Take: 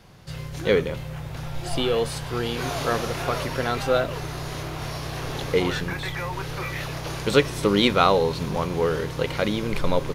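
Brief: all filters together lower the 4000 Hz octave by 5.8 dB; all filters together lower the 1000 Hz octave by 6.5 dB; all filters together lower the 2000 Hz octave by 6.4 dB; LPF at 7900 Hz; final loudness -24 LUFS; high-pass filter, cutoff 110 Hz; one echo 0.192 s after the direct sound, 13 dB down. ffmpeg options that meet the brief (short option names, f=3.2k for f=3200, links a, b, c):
-af "highpass=110,lowpass=7.9k,equalizer=f=1k:t=o:g=-7.5,equalizer=f=2k:t=o:g=-4.5,equalizer=f=4k:t=o:g=-5,aecho=1:1:192:0.224,volume=3.5dB"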